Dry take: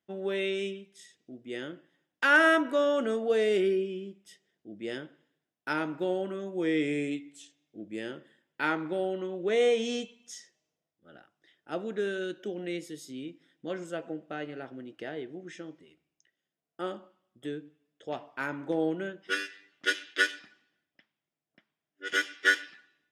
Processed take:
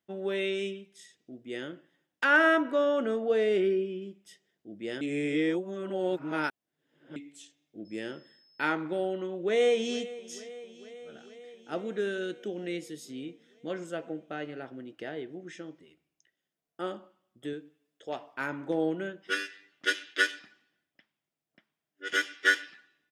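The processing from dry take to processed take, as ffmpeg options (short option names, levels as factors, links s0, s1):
-filter_complex "[0:a]asettb=1/sr,asplit=3[s0][s1][s2];[s0]atrim=end=2.244[s3];[s1]atrim=start=2.24:end=4.02,asetpts=PTS-STARTPTS,afade=t=in:d=0.004:c=qsin,afade=t=out:st=1.776:d=0.004:c=qsin,lowpass=f=3000:p=1[s4];[s2]atrim=start=4.016[s5];[s3][s4]acrossfade=d=0.004:c1=hsin:c2=qsin[s6];[s6][s5]acrossfade=d=0.004:c1=qsin:c2=hsin,asettb=1/sr,asplit=3[s7][s8][s9];[s7]atrim=end=7.854[s10];[s8]atrim=start=7.85:end=8.72,asetpts=PTS-STARTPTS,afade=t=in:d=0.004:c=qsin,afade=t=out:st=0.866:d=0.004:c=qsin,aeval=exprs='val(0)+0.000891*sin(2*PI*5200*n/s)':c=same[s11];[s9]atrim=start=8.716[s12];[s10][s11]acrossfade=d=0.004:c1=hsin:c2=qsin[s13];[s13][s12]acrossfade=d=0.004:c1=qsin:c2=hsin,asplit=2[s14][s15];[s15]afade=t=in:st=9.28:d=0.01,afade=t=out:st=10.17:d=0.01,aecho=0:1:450|900|1350|1800|2250|2700|3150|3600|4050|4500:0.133352|0.100014|0.0750106|0.0562579|0.0421935|0.0316451|0.0237338|0.0178004|0.0133503|0.0100127[s16];[s14][s16]amix=inputs=2:normalize=0,asettb=1/sr,asplit=3[s17][s18][s19];[s17]atrim=end=17.534[s20];[s18]atrim=start=17.53:end=18.34,asetpts=PTS-STARTPTS,afade=t=in:d=0.004:c=qsin,afade=t=out:st=0.806:d=0.004:c=qsin,bass=f=250:g=-6,treble=f=4000:g=3[s21];[s19]atrim=start=18.336[s22];[s20][s21]acrossfade=d=0.004:c1=hsin:c2=qsin[s23];[s23][s22]acrossfade=d=0.004:c1=qsin:c2=hsin,asplit=3[s24][s25][s26];[s24]atrim=end=5.012[s27];[s25]atrim=start=5.008:end=7.162,asetpts=PTS-STARTPTS,areverse[s28];[s26]atrim=start=7.158[s29];[s27][s28]acrossfade=d=0.004:c1=hsin:c2=hsin[s30];[s30][s29]acrossfade=d=0.004:c1=hsin:c2=hsin"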